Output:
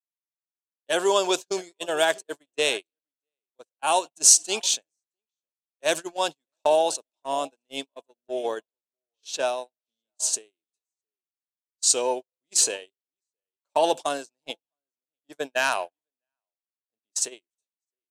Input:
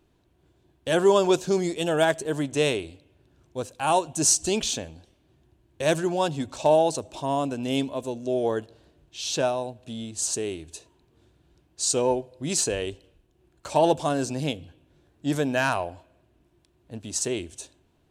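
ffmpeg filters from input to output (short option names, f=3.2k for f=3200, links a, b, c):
-filter_complex "[0:a]highpass=460,asplit=2[a][b];[b]aecho=0:1:664:0.106[c];[a][c]amix=inputs=2:normalize=0,agate=range=-48dB:threshold=-28dB:ratio=16:detection=peak,adynamicequalizer=threshold=0.0126:dfrequency=2200:dqfactor=0.7:tfrequency=2200:tqfactor=0.7:attack=5:release=100:ratio=0.375:range=3:mode=boostabove:tftype=highshelf"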